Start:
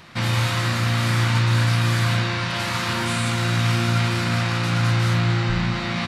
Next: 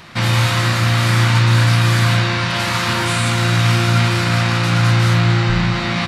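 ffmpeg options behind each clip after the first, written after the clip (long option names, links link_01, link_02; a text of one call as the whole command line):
ffmpeg -i in.wav -af "bandreject=frequency=46.5:width_type=h:width=4,bandreject=frequency=93:width_type=h:width=4,bandreject=frequency=139.5:width_type=h:width=4,bandreject=frequency=186:width_type=h:width=4,bandreject=frequency=232.5:width_type=h:width=4,bandreject=frequency=279:width_type=h:width=4,bandreject=frequency=325.5:width_type=h:width=4,bandreject=frequency=372:width_type=h:width=4,bandreject=frequency=418.5:width_type=h:width=4,bandreject=frequency=465:width_type=h:width=4,bandreject=frequency=511.5:width_type=h:width=4,bandreject=frequency=558:width_type=h:width=4,bandreject=frequency=604.5:width_type=h:width=4,volume=6dB" out.wav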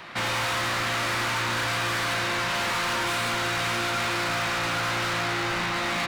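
ffmpeg -i in.wav -filter_complex "[0:a]bass=frequency=250:gain=-12,treble=frequency=4000:gain=-9,acrossover=split=240|2500[link_01][link_02][link_03];[link_01]alimiter=level_in=5dB:limit=-24dB:level=0:latency=1:release=273,volume=-5dB[link_04];[link_04][link_02][link_03]amix=inputs=3:normalize=0,asoftclip=type=hard:threshold=-25dB" out.wav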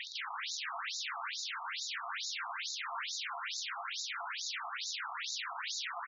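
ffmpeg -i in.wav -af "aeval=exprs='(mod(42.2*val(0)+1,2)-1)/42.2':channel_layout=same,aecho=1:1:227:0.473,afftfilt=real='re*between(b*sr/1024,930*pow(5200/930,0.5+0.5*sin(2*PI*2.3*pts/sr))/1.41,930*pow(5200/930,0.5+0.5*sin(2*PI*2.3*pts/sr))*1.41)':imag='im*between(b*sr/1024,930*pow(5200/930,0.5+0.5*sin(2*PI*2.3*pts/sr))/1.41,930*pow(5200/930,0.5+0.5*sin(2*PI*2.3*pts/sr))*1.41)':win_size=1024:overlap=0.75,volume=7dB" out.wav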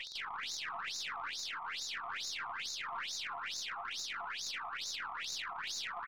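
ffmpeg -i in.wav -af "aeval=exprs='(tanh(35.5*val(0)+0.25)-tanh(0.25))/35.5':channel_layout=same" out.wav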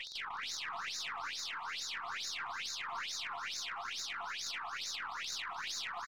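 ffmpeg -i in.wav -af "aecho=1:1:301:0.178" out.wav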